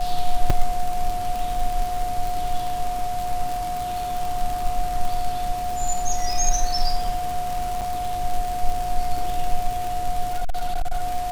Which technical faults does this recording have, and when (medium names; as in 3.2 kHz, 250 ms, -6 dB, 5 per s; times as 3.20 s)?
crackle 89 per s -24 dBFS
whine 720 Hz -25 dBFS
0.50 s: dropout 4.3 ms
7.81–7.82 s: dropout 6.2 ms
10.27–11.01 s: clipped -18 dBFS